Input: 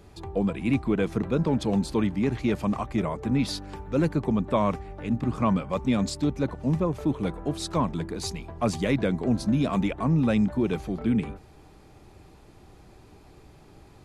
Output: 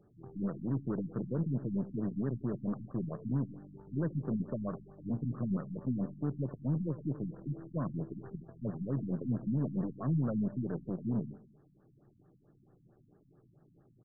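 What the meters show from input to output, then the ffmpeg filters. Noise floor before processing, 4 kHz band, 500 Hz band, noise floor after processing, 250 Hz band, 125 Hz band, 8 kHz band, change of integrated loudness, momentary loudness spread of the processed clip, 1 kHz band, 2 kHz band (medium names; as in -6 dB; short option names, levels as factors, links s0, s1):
-52 dBFS, under -40 dB, -13.5 dB, -66 dBFS, -9.5 dB, -6.5 dB, under -35 dB, -9.5 dB, 8 LU, -18.5 dB, under -20 dB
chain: -af "bandreject=f=960:w=5.7,aeval=exprs='0.251*(cos(1*acos(clip(val(0)/0.251,-1,1)))-cos(1*PI/2))+0.0224*(cos(4*acos(clip(val(0)/0.251,-1,1)))-cos(4*PI/2))+0.0224*(cos(7*acos(clip(val(0)/0.251,-1,1)))-cos(7*PI/2))+0.00891*(cos(8*acos(clip(val(0)/0.251,-1,1)))-cos(8*PI/2))':c=same,equalizer=f=810:t=o:w=0.28:g=-5.5,alimiter=limit=0.0794:level=0:latency=1:release=12,lowshelf=f=100:t=q:w=3:g=-8.5,aecho=1:1:82|164|246|328:0.133|0.0653|0.032|0.0157,afftfilt=real='re*lt(b*sr/1024,270*pow(1900/270,0.5+0.5*sin(2*PI*4.5*pts/sr)))':imag='im*lt(b*sr/1024,270*pow(1900/270,0.5+0.5*sin(2*PI*4.5*pts/sr)))':win_size=1024:overlap=0.75,volume=0.631"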